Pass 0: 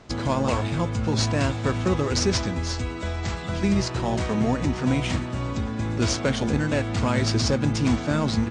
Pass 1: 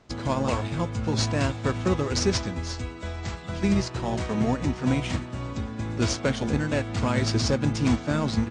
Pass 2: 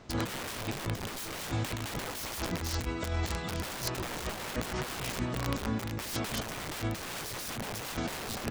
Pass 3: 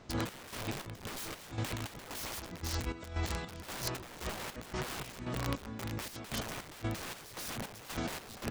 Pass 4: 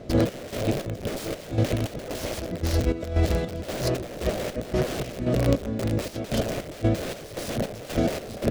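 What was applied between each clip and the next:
upward expander 1.5:1, over -35 dBFS
wrapped overs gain 24.5 dB; negative-ratio compressor -34 dBFS, ratio -0.5
chopper 1.9 Hz, depth 65%, duty 55%; gain -2.5 dB
resonant low shelf 750 Hz +7 dB, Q 3; running maximum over 3 samples; gain +6.5 dB

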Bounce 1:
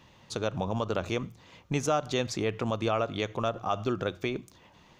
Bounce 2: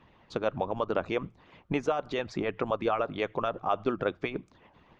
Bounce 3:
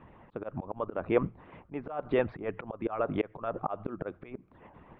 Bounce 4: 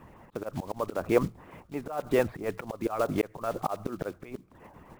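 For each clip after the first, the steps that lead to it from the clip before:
LPF 2300 Hz 12 dB/oct; harmonic-percussive split harmonic -16 dB; gain +4 dB
auto swell 0.284 s; Gaussian blur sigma 3.9 samples; gain +6.5 dB
block floating point 5-bit; gain +2.5 dB

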